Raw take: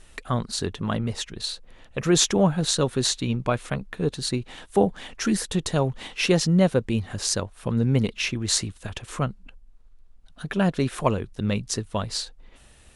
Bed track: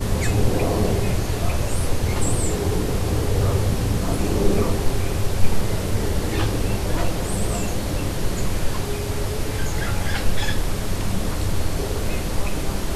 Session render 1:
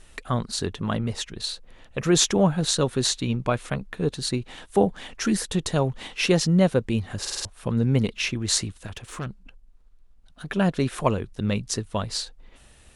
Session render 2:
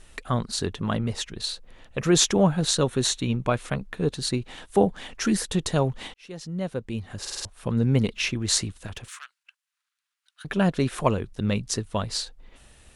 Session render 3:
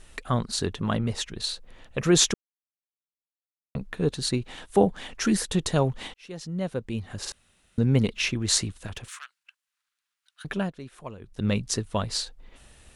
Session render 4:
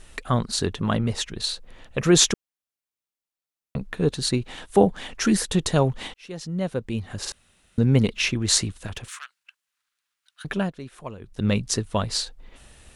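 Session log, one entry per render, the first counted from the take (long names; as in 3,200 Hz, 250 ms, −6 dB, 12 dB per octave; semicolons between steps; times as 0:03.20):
0:07.20: stutter in place 0.05 s, 5 plays; 0:08.84–0:10.48: tube saturation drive 27 dB, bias 0.4
0:02.80–0:03.49: notch filter 4,800 Hz, Q 6.2; 0:06.14–0:07.85: fade in; 0:09.08–0:10.45: high-pass filter 1,400 Hz 24 dB per octave
0:02.34–0:03.75: silence; 0:07.32–0:07.78: fill with room tone; 0:10.46–0:11.46: duck −17 dB, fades 0.27 s
level +3 dB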